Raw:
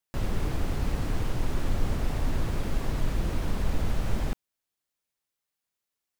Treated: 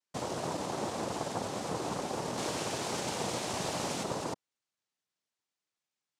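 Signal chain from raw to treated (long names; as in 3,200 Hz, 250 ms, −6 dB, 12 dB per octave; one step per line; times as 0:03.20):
0:02.37–0:04.03: high-shelf EQ 2,000 Hz +11 dB
cochlear-implant simulation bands 2
level −1.5 dB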